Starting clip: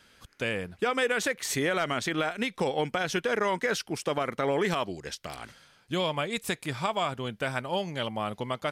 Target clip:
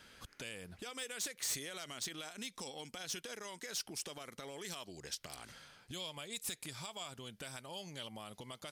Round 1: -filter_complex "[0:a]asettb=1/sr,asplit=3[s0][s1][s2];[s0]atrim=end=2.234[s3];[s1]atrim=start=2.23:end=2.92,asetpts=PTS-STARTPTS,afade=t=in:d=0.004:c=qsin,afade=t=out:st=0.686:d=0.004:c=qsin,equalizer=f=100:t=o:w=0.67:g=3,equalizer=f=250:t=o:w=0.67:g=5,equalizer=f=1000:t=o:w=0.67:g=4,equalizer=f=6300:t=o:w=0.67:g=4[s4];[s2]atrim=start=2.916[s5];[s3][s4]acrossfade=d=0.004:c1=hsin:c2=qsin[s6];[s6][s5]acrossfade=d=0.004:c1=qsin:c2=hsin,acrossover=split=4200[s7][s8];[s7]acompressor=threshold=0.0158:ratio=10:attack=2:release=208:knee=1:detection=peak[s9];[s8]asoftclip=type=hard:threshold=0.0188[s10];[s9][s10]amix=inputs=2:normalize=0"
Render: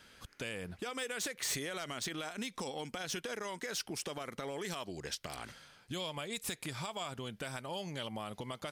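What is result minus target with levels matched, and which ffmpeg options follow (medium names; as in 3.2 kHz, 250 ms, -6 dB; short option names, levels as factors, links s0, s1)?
compression: peak gain reduction -7.5 dB
-filter_complex "[0:a]asettb=1/sr,asplit=3[s0][s1][s2];[s0]atrim=end=2.234[s3];[s1]atrim=start=2.23:end=2.92,asetpts=PTS-STARTPTS,afade=t=in:d=0.004:c=qsin,afade=t=out:st=0.686:d=0.004:c=qsin,equalizer=f=100:t=o:w=0.67:g=3,equalizer=f=250:t=o:w=0.67:g=5,equalizer=f=1000:t=o:w=0.67:g=4,equalizer=f=6300:t=o:w=0.67:g=4[s4];[s2]atrim=start=2.916[s5];[s3][s4]acrossfade=d=0.004:c1=hsin:c2=qsin[s6];[s6][s5]acrossfade=d=0.004:c1=qsin:c2=hsin,acrossover=split=4200[s7][s8];[s7]acompressor=threshold=0.00596:ratio=10:attack=2:release=208:knee=1:detection=peak[s9];[s8]asoftclip=type=hard:threshold=0.0188[s10];[s9][s10]amix=inputs=2:normalize=0"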